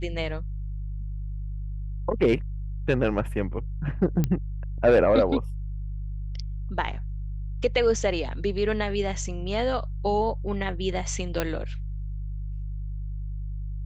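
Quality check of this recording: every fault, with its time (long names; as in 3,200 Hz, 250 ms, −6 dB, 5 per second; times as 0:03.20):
mains hum 50 Hz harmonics 3 −32 dBFS
0:04.24: click −12 dBFS
0:11.40: click −10 dBFS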